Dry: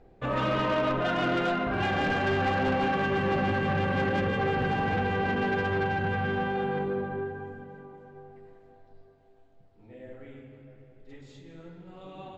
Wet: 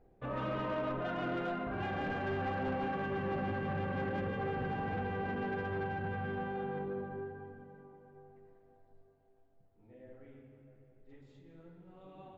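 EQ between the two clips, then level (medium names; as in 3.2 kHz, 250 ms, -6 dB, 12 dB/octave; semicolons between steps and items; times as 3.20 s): treble shelf 3 kHz -12 dB; -8.5 dB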